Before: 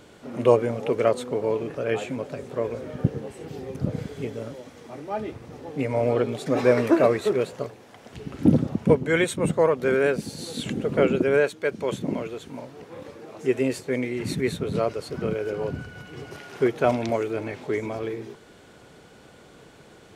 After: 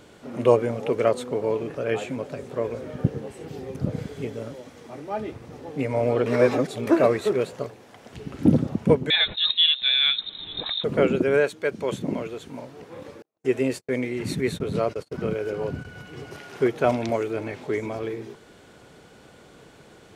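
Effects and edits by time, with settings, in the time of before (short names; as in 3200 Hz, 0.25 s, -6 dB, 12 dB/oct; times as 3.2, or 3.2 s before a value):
6.26–6.87 reverse
9.1–10.84 inverted band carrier 3900 Hz
13.22–15.85 gate -36 dBFS, range -46 dB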